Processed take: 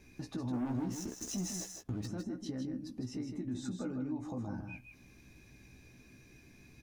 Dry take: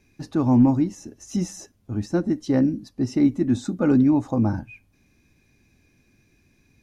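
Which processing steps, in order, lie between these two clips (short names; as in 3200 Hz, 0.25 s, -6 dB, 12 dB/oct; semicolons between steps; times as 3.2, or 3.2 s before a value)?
0.53–2.06 sample leveller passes 3; limiter -19.5 dBFS, peak gain reduction 11.5 dB; compressor 3:1, threshold -45 dBFS, peak gain reduction 16.5 dB; doubler 16 ms -6.5 dB; echo 0.157 s -6 dB; gain +1.5 dB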